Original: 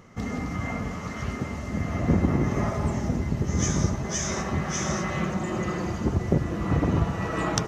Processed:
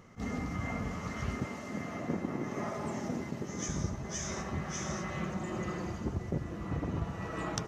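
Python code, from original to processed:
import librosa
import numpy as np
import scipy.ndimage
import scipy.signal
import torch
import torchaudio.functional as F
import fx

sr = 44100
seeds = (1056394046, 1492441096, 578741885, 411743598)

y = fx.highpass(x, sr, hz=210.0, slope=12, at=(1.45, 3.69))
y = fx.rider(y, sr, range_db=4, speed_s=0.5)
y = fx.attack_slew(y, sr, db_per_s=340.0)
y = y * 10.0 ** (-8.5 / 20.0)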